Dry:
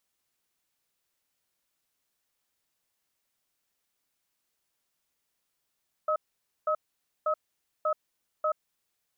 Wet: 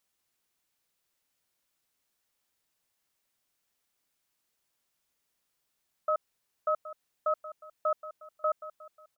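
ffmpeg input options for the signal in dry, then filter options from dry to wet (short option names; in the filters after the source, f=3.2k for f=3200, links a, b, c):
-f lavfi -i "aevalsrc='0.0473*(sin(2*PI*616*t)+sin(2*PI*1280*t))*clip(min(mod(t,0.59),0.08-mod(t,0.59))/0.005,0,1)':d=2.55:s=44100"
-af "aecho=1:1:770|1540|2310|3080:0.188|0.0866|0.0399|0.0183"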